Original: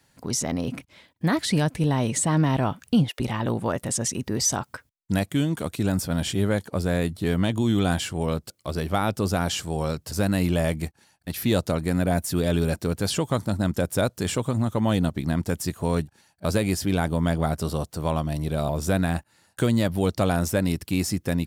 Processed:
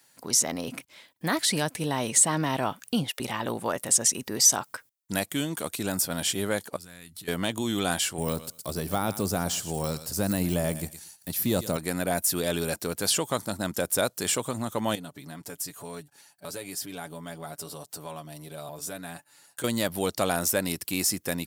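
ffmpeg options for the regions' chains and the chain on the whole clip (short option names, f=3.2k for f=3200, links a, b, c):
-filter_complex "[0:a]asettb=1/sr,asplit=3[a][b][c];[a]atrim=end=6.764[d];[b]atrim=start=6.76:end=7.28,asetpts=PTS-STARTPTS,afade=t=in:d=0.004:c=qsin,afade=t=out:st=0.516:d=0.004:c=qsin,equalizer=f=510:w=0.84:g=-13.5,acompressor=threshold=-38dB:ratio=5:attack=3.2:release=140:knee=1:detection=peak[e];[c]atrim=start=7.276[f];[d][e]acrossfade=d=0.004:c1=hsin:c2=qsin[g];[g][f]acrossfade=d=0.004:c1=qsin:c2=hsin,asettb=1/sr,asplit=3[h][i][j];[h]atrim=end=8.184[k];[i]atrim=start=8.18:end=11.77,asetpts=PTS-STARTPTS,afade=t=in:d=0.004:c=qsin,afade=t=out:st=3.586:d=0.004:c=qsin,bass=f=250:g=7,treble=f=4k:g=12,aecho=1:1:115|230:0.141|0.0226,atrim=end_sample=158319,deesser=0.85[l];[j]atrim=start=11.766[m];[k][l]acrossfade=d=0.004:c1=hsin:c2=qsin[n];[n][m]acrossfade=d=0.004:c1=qsin:c2=hsin,asettb=1/sr,asplit=3[o][p][q];[o]atrim=end=14.954[r];[p]atrim=start=14.95:end=19.64,asetpts=PTS-STARTPTS,afade=t=in:d=0.004:c=qsin,afade=t=out:st=4.686:d=0.004:c=qsin,aecho=1:1:7:0.63,atrim=end_sample=206829,acompressor=threshold=-41dB:ratio=2:attack=3.2:release=140:knee=1:detection=peak[s];[q]atrim=start=19.636[t];[r][s]acrossfade=d=0.004:c1=hsin:c2=qsin[u];[u][t]acrossfade=d=0.004:c1=qsin:c2=hsin,highpass=f=470:p=1,highshelf=f=6.8k:g=10.5"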